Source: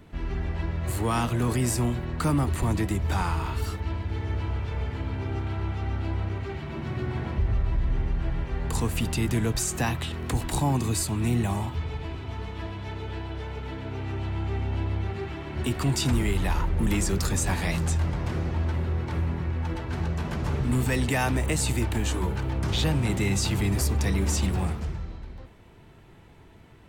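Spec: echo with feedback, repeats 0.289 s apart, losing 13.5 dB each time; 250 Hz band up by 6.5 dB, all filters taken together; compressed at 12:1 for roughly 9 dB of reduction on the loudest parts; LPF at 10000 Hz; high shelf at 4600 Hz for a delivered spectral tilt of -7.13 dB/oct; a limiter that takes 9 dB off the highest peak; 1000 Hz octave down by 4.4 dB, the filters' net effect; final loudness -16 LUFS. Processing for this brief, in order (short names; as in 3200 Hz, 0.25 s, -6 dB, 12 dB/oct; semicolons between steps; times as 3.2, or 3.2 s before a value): LPF 10000 Hz; bell 250 Hz +8.5 dB; bell 1000 Hz -6 dB; high shelf 4600 Hz -5.5 dB; compressor 12:1, threshold -25 dBFS; limiter -25.5 dBFS; feedback echo 0.289 s, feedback 21%, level -13.5 dB; gain +18 dB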